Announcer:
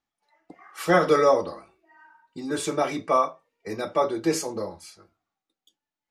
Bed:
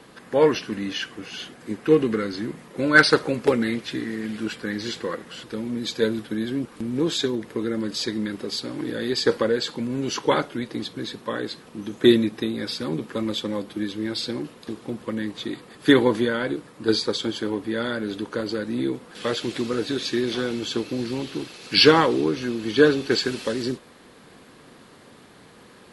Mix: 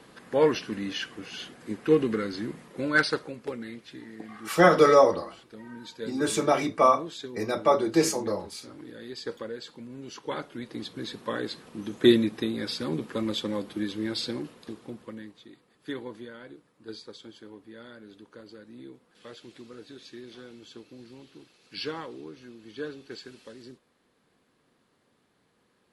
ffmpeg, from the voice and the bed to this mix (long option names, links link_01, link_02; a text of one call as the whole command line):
ffmpeg -i stem1.wav -i stem2.wav -filter_complex "[0:a]adelay=3700,volume=1.5dB[link_01];[1:a]volume=8dB,afade=type=out:start_time=2.56:duration=0.79:silence=0.281838,afade=type=in:start_time=10.22:duration=1.07:silence=0.251189,afade=type=out:start_time=14.19:duration=1.22:silence=0.141254[link_02];[link_01][link_02]amix=inputs=2:normalize=0" out.wav